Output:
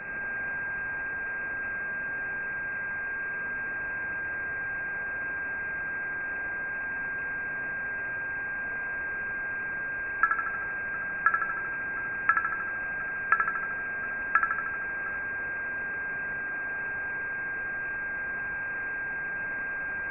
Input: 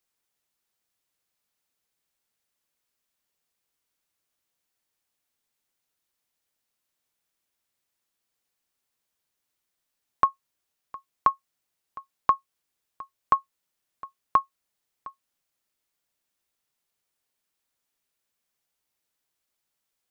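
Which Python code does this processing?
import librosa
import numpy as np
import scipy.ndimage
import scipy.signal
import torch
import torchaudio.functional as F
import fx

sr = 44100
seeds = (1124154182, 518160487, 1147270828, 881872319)

p1 = x * np.sin(2.0 * np.pi * 170.0 * np.arange(len(x)) / sr)
p2 = fx.quant_dither(p1, sr, seeds[0], bits=6, dither='triangular')
p3 = p2 + 10.0 ** (-37.0 / 20.0) * np.sin(2.0 * np.pi * 1000.0 * np.arange(len(p2)) / sr)
p4 = p3 + fx.echo_thinned(p3, sr, ms=77, feedback_pct=67, hz=400.0, wet_db=-4, dry=0)
y = fx.freq_invert(p4, sr, carrier_hz=2600)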